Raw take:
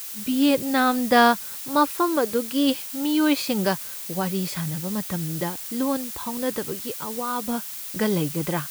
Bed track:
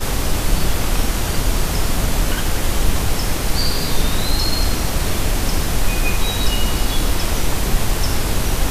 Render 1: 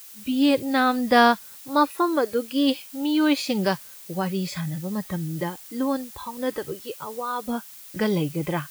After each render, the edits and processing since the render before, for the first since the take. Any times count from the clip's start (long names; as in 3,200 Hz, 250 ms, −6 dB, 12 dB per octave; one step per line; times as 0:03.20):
noise reduction from a noise print 9 dB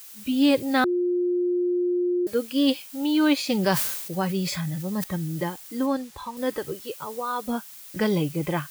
0:00.84–0:02.27: beep over 355 Hz −20.5 dBFS
0:03.45–0:05.04: level that may fall only so fast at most 48 dB per second
0:05.86–0:06.37: high-shelf EQ 9,800 Hz −11.5 dB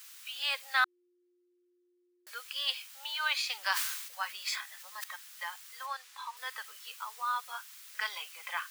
inverse Chebyshev high-pass filter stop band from 320 Hz, stop band 60 dB
high-shelf EQ 6,400 Hz −9.5 dB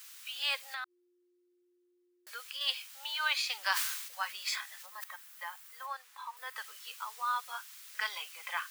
0:00.58–0:02.61: downward compressor 5 to 1, threshold −37 dBFS
0:04.86–0:06.56: parametric band 4,700 Hz −7.5 dB 2.5 octaves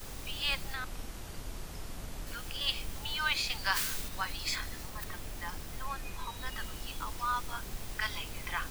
mix in bed track −24 dB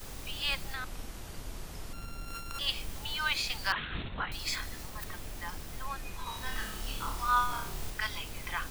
0:01.93–0:02.59: samples sorted by size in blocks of 32 samples
0:03.72–0:04.32: linear-prediction vocoder at 8 kHz whisper
0:06.23–0:07.90: flutter between parallel walls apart 4.9 metres, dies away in 0.53 s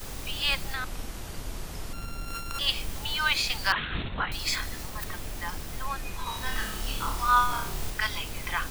level +5.5 dB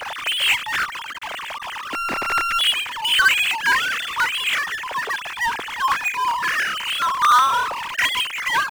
three sine waves on the formant tracks
power curve on the samples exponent 0.5